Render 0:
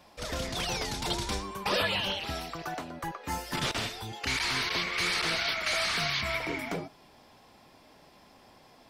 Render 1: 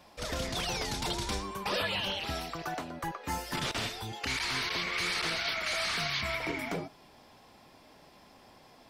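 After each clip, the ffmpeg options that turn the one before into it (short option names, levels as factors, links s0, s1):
-af "alimiter=limit=0.0708:level=0:latency=1:release=99"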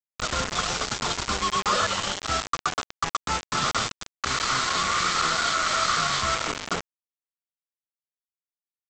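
-af "superequalizer=6b=0.631:10b=3.98:12b=0.501,aresample=16000,acrusher=bits=4:mix=0:aa=0.000001,aresample=44100,volume=1.58"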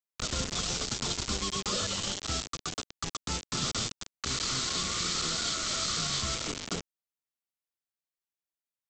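-filter_complex "[0:a]acrossover=split=460|3000[s0][s1][s2];[s1]acompressor=threshold=0.00794:ratio=4[s3];[s0][s3][s2]amix=inputs=3:normalize=0,volume=0.841"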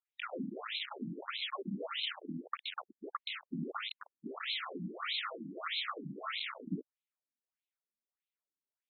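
-af "afftfilt=real='re*between(b*sr/1024,220*pow(3000/220,0.5+0.5*sin(2*PI*1.6*pts/sr))/1.41,220*pow(3000/220,0.5+0.5*sin(2*PI*1.6*pts/sr))*1.41)':imag='im*between(b*sr/1024,220*pow(3000/220,0.5+0.5*sin(2*PI*1.6*pts/sr))/1.41,220*pow(3000/220,0.5+0.5*sin(2*PI*1.6*pts/sr))*1.41)':win_size=1024:overlap=0.75,volume=1.41"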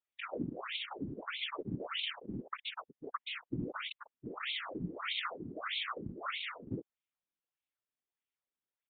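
-af "afftfilt=real='hypot(re,im)*cos(2*PI*random(0))':imag='hypot(re,im)*sin(2*PI*random(1))':win_size=512:overlap=0.75,aresample=8000,aresample=44100,volume=2.11"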